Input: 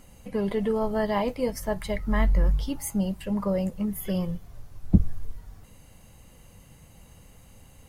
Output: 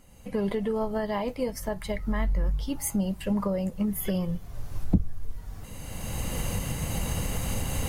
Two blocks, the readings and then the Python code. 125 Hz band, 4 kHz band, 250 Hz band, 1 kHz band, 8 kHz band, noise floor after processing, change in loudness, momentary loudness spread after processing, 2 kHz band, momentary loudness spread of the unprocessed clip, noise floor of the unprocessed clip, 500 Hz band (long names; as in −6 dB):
−0.5 dB, +3.0 dB, −1.0 dB, −2.0 dB, +6.0 dB, −44 dBFS, −2.5 dB, 12 LU, −1.0 dB, 9 LU, −53 dBFS, −2.0 dB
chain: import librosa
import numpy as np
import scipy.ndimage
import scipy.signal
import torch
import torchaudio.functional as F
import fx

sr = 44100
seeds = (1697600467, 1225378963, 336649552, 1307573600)

y = fx.recorder_agc(x, sr, target_db=-14.5, rise_db_per_s=22.0, max_gain_db=30)
y = F.gain(torch.from_numpy(y), -5.0).numpy()